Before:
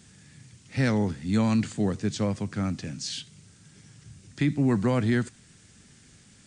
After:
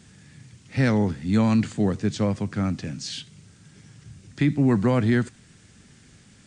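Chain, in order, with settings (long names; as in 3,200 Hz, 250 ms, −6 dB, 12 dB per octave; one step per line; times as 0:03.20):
high-shelf EQ 4,700 Hz −6.5 dB
level +3.5 dB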